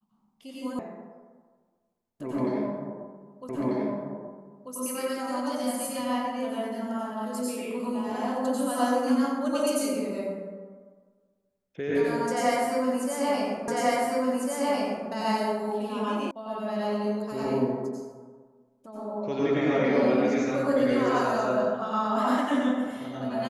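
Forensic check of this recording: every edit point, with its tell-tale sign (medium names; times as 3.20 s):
0.79 s: sound stops dead
3.49 s: repeat of the last 1.24 s
13.68 s: repeat of the last 1.4 s
16.31 s: sound stops dead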